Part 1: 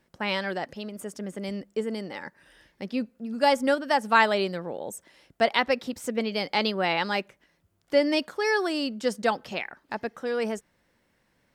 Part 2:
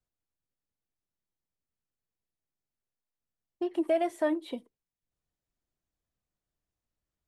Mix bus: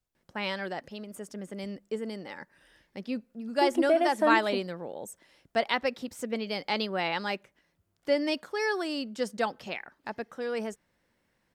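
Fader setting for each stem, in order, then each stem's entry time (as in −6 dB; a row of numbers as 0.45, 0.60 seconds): −4.5, +2.5 decibels; 0.15, 0.00 seconds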